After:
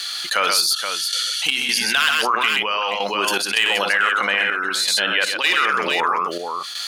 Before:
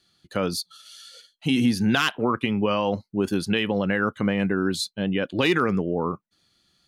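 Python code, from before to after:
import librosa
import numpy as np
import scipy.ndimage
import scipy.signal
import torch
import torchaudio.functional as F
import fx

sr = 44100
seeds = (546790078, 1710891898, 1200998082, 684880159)

y = fx.rider(x, sr, range_db=4, speed_s=0.5)
y = scipy.signal.sosfilt(scipy.signal.butter(2, 1300.0, 'highpass', fs=sr, output='sos'), y)
y = np.clip(y, -10.0 ** (-18.0 / 20.0), 10.0 ** (-18.0 / 20.0))
y = fx.echo_multitap(y, sr, ms=(60, 128, 475), db=(-12.5, -6.0, -10.0))
y = fx.step_gate(y, sr, bpm=80, pattern='xxxx..xx.x', floor_db=-12.0, edge_ms=4.5)
y = fx.env_flatten(y, sr, amount_pct=70)
y = F.gain(torch.from_numpy(y), 8.0).numpy()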